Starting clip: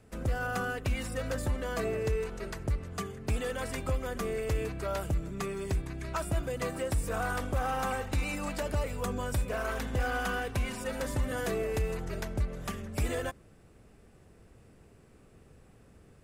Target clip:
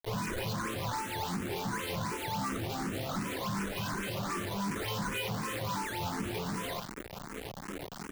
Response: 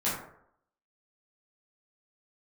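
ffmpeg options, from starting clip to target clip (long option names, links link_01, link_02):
-filter_complex "[0:a]asplit=2[link_01][link_02];[link_02]alimiter=level_in=7dB:limit=-24dB:level=0:latency=1,volume=-7dB,volume=-0.5dB[link_03];[link_01][link_03]amix=inputs=2:normalize=0,highpass=frequency=55:width=0.5412,highpass=frequency=55:width=1.3066,asplit=2[link_04][link_05];[link_05]adelay=174.9,volume=-6dB,highshelf=frequency=4000:gain=-3.94[link_06];[link_04][link_06]amix=inputs=2:normalize=0[link_07];[1:a]atrim=start_sample=2205,afade=type=out:start_time=0.3:duration=0.01,atrim=end_sample=13671[link_08];[link_07][link_08]afir=irnorm=-1:irlink=0,acompressor=threshold=-26dB:ratio=10,aresample=11025,asoftclip=type=tanh:threshold=-31.5dB,aresample=44100,equalizer=frequency=91:width=1.7:gain=6,bandreject=frequency=156.6:width_type=h:width=4,bandreject=frequency=313.2:width_type=h:width=4,bandreject=frequency=469.8:width_type=h:width=4,bandreject=frequency=626.4:width_type=h:width=4,bandreject=frequency=783:width_type=h:width=4,bandreject=frequency=939.6:width_type=h:width=4,bandreject=frequency=1096.2:width_type=h:width=4,bandreject=frequency=1252.8:width_type=h:width=4,acrusher=samples=20:mix=1:aa=0.000001:lfo=1:lforange=32:lforate=1.8,asetrate=88200,aresample=44100,acrusher=bits=5:mix=0:aa=0.000001,asplit=2[link_09][link_10];[link_10]afreqshift=2.7[link_11];[link_09][link_11]amix=inputs=2:normalize=1"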